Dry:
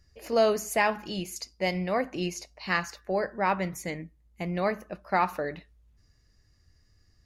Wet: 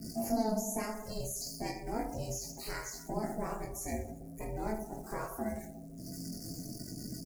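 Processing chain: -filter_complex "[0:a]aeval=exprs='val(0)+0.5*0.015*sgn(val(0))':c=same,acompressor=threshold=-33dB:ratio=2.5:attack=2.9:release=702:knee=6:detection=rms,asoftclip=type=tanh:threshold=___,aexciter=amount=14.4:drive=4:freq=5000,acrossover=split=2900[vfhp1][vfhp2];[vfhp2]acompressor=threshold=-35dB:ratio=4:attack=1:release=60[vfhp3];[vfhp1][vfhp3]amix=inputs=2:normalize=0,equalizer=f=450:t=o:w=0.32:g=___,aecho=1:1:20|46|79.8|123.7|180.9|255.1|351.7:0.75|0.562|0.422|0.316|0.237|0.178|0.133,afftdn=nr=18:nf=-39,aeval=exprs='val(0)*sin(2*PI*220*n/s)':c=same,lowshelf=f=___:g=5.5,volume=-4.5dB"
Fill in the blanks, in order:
-27dB, 11, 250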